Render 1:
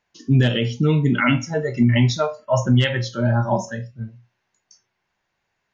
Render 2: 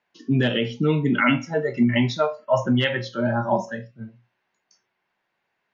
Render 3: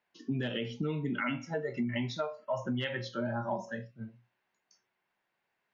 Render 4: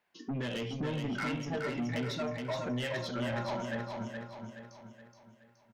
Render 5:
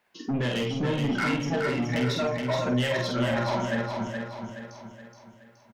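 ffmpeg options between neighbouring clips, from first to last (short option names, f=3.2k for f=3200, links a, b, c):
-filter_complex "[0:a]acrossover=split=160 4300:gain=0.158 1 0.178[a][b][c];[a][b][c]amix=inputs=3:normalize=0"
-af "acompressor=threshold=-25dB:ratio=4,volume=-6dB"
-af "asoftclip=type=tanh:threshold=-34.5dB,aecho=1:1:422|844|1266|1688|2110|2532:0.562|0.259|0.119|0.0547|0.0252|0.0116,volume=3dB"
-filter_complex "[0:a]asplit=2[a][b];[b]adelay=48,volume=-4.5dB[c];[a][c]amix=inputs=2:normalize=0,volume=7dB"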